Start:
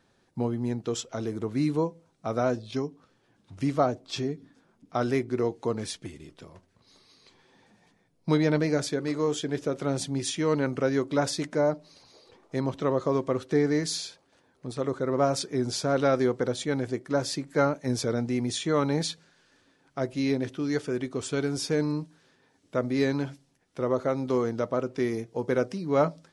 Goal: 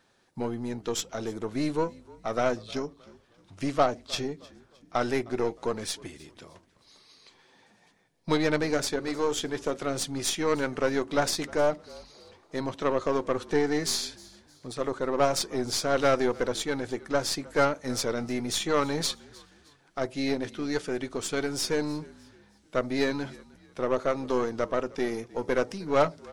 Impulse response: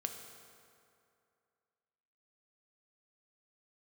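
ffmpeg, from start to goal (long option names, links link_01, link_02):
-filter_complex "[0:a]lowshelf=frequency=400:gain=-8.5,aeval=exprs='0.251*(cos(1*acos(clip(val(0)/0.251,-1,1)))-cos(1*PI/2))+0.0178*(cos(8*acos(clip(val(0)/0.251,-1,1)))-cos(8*PI/2))':channel_layout=same,asplit=4[link_01][link_02][link_03][link_04];[link_02]adelay=309,afreqshift=-47,volume=-22.5dB[link_05];[link_03]adelay=618,afreqshift=-94,volume=-31.1dB[link_06];[link_04]adelay=927,afreqshift=-141,volume=-39.8dB[link_07];[link_01][link_05][link_06][link_07]amix=inputs=4:normalize=0,volume=3dB"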